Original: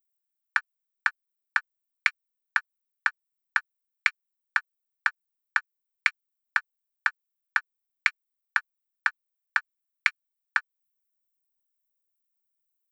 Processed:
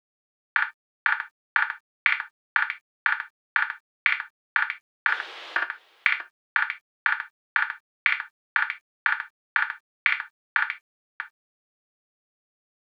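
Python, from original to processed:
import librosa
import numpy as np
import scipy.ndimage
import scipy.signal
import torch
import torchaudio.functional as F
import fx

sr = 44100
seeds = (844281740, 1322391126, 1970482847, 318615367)

p1 = fx.delta_mod(x, sr, bps=64000, step_db=-32.5, at=(5.08, 5.57))
p2 = scipy.signal.sosfilt(scipy.signal.ellip(3, 1.0, 80, [400.0, 3500.0], 'bandpass', fs=sr, output='sos'), p1)
p3 = p2 + fx.echo_multitap(p2, sr, ms=(62, 639), db=(-10.0, -18.0), dry=0)
p4 = fx.rev_gated(p3, sr, seeds[0], gate_ms=90, shape='falling', drr_db=6.5)
p5 = fx.over_compress(p4, sr, threshold_db=-31.0, ratio=-1.0)
p6 = p4 + F.gain(torch.from_numpy(p5), 0.0).numpy()
p7 = fx.dynamic_eq(p6, sr, hz=610.0, q=0.86, threshold_db=-43.0, ratio=4.0, max_db=4, at=(1.08, 2.57))
y = fx.quant_dither(p7, sr, seeds[1], bits=12, dither='none')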